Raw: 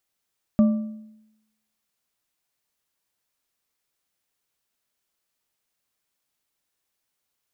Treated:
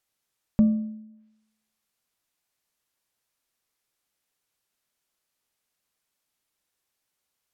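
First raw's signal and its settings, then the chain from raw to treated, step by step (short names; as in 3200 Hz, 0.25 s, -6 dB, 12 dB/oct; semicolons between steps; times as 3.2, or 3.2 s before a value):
metal hit bar, lowest mode 217 Hz, modes 3, decay 0.88 s, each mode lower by 12 dB, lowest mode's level -11.5 dB
treble ducked by the level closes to 330 Hz, closed at -33 dBFS; de-hum 88.63 Hz, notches 5; dynamic EQ 1000 Hz, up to +5 dB, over -45 dBFS, Q 0.9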